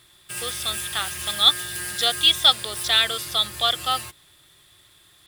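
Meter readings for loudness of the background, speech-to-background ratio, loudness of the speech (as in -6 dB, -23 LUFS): -30.5 LUFS, 10.5 dB, -20.0 LUFS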